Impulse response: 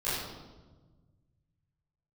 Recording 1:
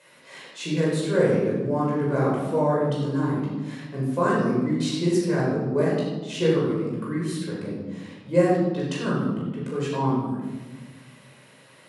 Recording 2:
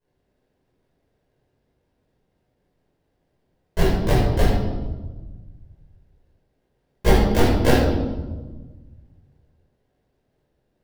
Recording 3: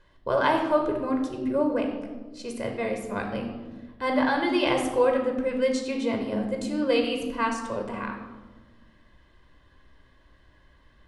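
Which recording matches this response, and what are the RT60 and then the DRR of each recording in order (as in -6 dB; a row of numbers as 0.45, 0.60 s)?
2; 1.3, 1.3, 1.3 s; -6.0, -14.5, 2.5 dB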